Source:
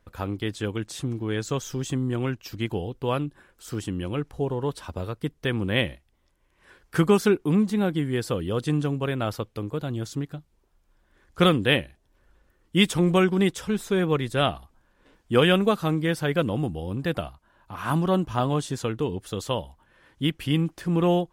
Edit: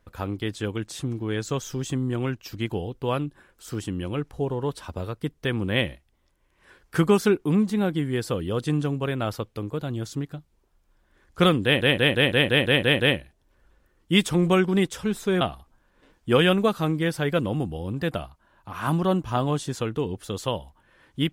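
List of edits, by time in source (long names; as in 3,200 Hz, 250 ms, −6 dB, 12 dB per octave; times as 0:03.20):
0:11.64: stutter 0.17 s, 9 plays
0:14.05–0:14.44: remove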